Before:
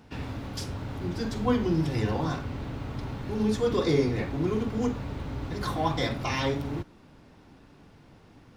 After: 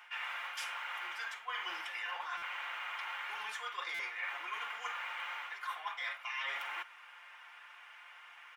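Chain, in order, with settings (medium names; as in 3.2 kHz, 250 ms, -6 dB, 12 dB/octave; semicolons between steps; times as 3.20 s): high-pass 1.1 kHz 24 dB/octave; resonant high shelf 3.4 kHz -8 dB, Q 3; band-stop 2.6 kHz, Q 12; comb 5.7 ms, depth 50%; reverse; compression 10:1, threshold -45 dBFS, peak gain reduction 18.5 dB; reverse; buffer glitch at 2.37/3.94 s, samples 256, times 8; trim +8 dB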